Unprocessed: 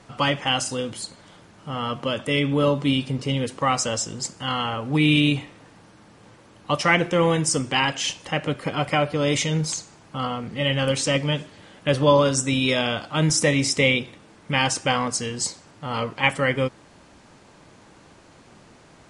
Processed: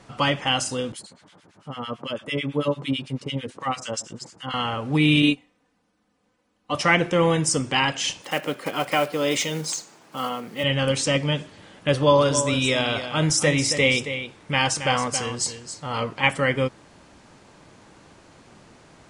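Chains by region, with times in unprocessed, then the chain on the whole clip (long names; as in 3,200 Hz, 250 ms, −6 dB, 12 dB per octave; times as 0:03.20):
0:00.92–0:04.54: high-pass filter 110 Hz + two-band tremolo in antiphase 9 Hz, depth 100%, crossover 1,300 Hz
0:05.22–0:06.75: comb filter 4 ms, depth 75% + expander for the loud parts 2.5 to 1, over −29 dBFS
0:08.22–0:10.64: one scale factor per block 5 bits + high-pass filter 250 Hz
0:11.93–0:16.01: parametric band 210 Hz −4 dB 0.81 octaves + single-tap delay 273 ms −10 dB
whole clip: no processing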